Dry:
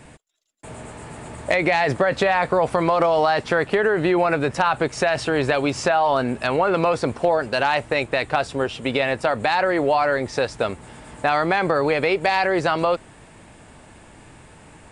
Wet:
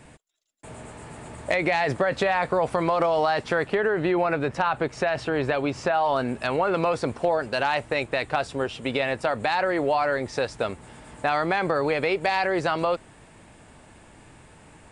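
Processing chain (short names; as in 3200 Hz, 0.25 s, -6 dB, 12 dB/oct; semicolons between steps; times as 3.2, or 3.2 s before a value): 3.7–5.93 high shelf 7700 Hz -> 4400 Hz -11 dB; gain -4 dB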